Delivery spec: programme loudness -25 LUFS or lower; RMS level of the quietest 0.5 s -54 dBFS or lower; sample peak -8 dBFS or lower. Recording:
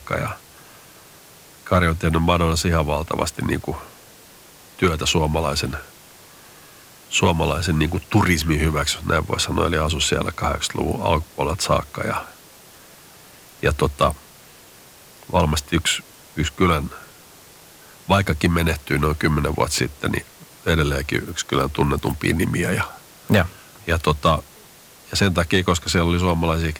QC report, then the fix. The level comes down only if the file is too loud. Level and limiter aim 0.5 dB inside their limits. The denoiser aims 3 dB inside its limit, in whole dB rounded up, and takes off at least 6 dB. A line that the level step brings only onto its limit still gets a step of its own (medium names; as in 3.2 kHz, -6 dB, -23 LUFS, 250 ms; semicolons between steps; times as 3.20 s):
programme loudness -21.0 LUFS: fail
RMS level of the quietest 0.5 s -47 dBFS: fail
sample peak -5.5 dBFS: fail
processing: noise reduction 6 dB, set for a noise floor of -47 dBFS; trim -4.5 dB